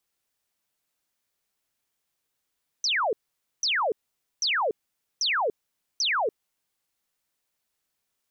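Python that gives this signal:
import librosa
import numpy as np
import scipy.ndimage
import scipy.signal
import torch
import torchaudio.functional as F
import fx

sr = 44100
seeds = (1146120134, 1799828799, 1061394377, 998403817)

y = fx.laser_zaps(sr, level_db=-22, start_hz=6200.0, end_hz=390.0, length_s=0.29, wave='sine', shots=5, gap_s=0.5)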